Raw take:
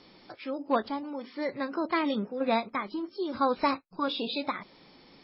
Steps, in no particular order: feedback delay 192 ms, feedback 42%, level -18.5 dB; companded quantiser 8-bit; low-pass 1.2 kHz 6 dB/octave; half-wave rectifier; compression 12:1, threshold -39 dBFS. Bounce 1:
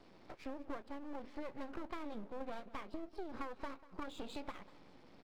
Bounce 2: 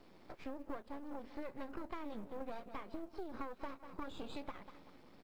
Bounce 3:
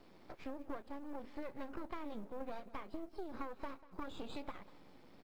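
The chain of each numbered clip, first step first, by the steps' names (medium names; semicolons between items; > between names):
companded quantiser > low-pass > half-wave rectifier > compression > feedback delay; feedback delay > half-wave rectifier > low-pass > compression > companded quantiser; half-wave rectifier > low-pass > compression > companded quantiser > feedback delay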